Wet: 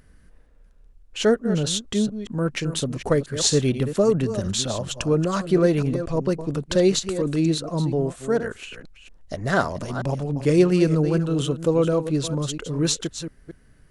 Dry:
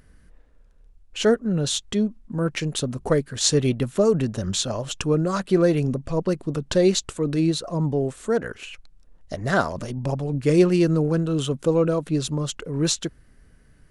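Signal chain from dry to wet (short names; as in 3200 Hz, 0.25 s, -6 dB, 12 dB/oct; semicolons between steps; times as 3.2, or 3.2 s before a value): reverse delay 0.233 s, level -10.5 dB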